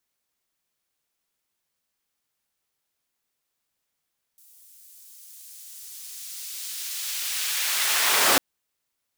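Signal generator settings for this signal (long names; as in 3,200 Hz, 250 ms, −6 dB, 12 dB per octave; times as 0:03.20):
filter sweep on noise pink, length 4.00 s highpass, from 9,600 Hz, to 330 Hz, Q 0.72, linear, gain ramp +30 dB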